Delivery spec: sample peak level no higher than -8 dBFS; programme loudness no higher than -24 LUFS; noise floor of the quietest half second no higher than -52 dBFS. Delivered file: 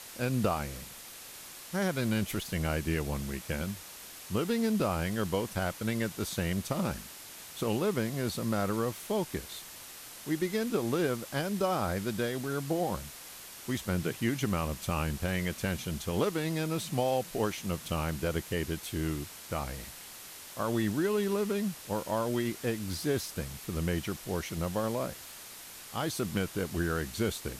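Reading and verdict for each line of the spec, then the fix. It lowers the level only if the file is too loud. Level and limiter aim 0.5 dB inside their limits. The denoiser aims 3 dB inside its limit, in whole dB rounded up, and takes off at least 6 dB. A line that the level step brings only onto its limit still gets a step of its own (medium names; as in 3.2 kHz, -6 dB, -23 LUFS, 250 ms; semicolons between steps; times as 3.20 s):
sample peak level -14.0 dBFS: pass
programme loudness -32.5 LUFS: pass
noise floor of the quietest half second -47 dBFS: fail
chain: noise reduction 8 dB, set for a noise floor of -47 dBFS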